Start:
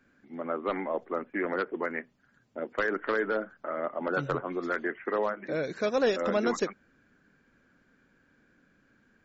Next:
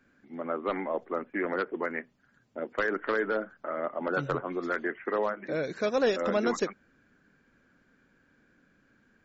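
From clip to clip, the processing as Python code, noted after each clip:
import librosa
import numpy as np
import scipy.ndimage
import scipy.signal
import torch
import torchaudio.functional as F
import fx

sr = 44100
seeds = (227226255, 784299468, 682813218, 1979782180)

y = x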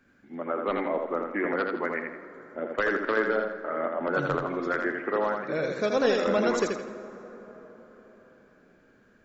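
y = fx.echo_feedback(x, sr, ms=82, feedback_pct=33, wet_db=-4.5)
y = fx.rev_plate(y, sr, seeds[0], rt60_s=4.8, hf_ratio=0.4, predelay_ms=0, drr_db=13.0)
y = y * 10.0 ** (1.5 / 20.0)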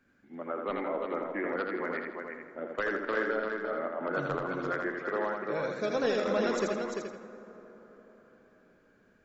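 y = x + 10.0 ** (-5.5 / 20.0) * np.pad(x, (int(345 * sr / 1000.0), 0))[:len(x)]
y = y * 10.0 ** (-5.5 / 20.0)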